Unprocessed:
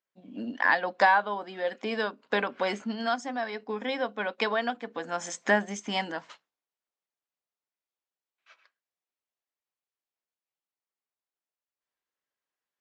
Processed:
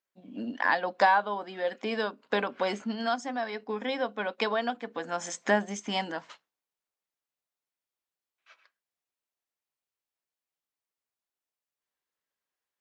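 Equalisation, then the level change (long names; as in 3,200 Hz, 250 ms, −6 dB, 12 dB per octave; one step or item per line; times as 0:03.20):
dynamic equaliser 1,900 Hz, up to −4 dB, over −37 dBFS, Q 1.7
0.0 dB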